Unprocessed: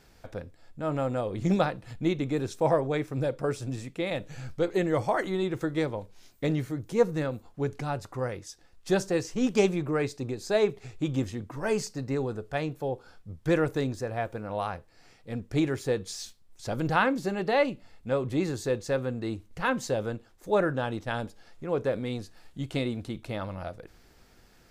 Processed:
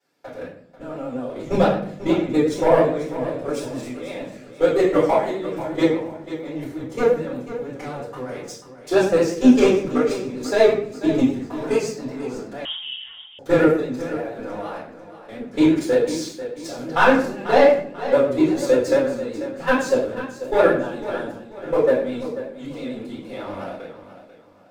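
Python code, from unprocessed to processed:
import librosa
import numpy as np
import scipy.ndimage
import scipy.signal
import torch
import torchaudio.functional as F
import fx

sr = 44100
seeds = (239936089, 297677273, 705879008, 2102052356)

y = scipy.signal.sosfilt(scipy.signal.butter(4, 190.0, 'highpass', fs=sr, output='sos'), x)
y = fx.leveller(y, sr, passes=2)
y = fx.level_steps(y, sr, step_db=19)
y = fx.echo_feedback(y, sr, ms=491, feedback_pct=35, wet_db=-12.5)
y = fx.room_shoebox(y, sr, seeds[0], volume_m3=90.0, walls='mixed', distance_m=4.3)
y = fx.vibrato(y, sr, rate_hz=8.6, depth_cents=51.0)
y = fx.freq_invert(y, sr, carrier_hz=3500, at=(12.65, 13.39))
y = y * 10.0 ** (-9.0 / 20.0)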